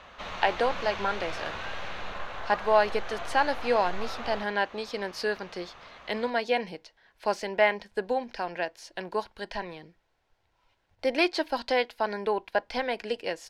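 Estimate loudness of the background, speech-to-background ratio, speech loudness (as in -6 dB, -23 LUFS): -37.5 LUFS, 8.5 dB, -29.0 LUFS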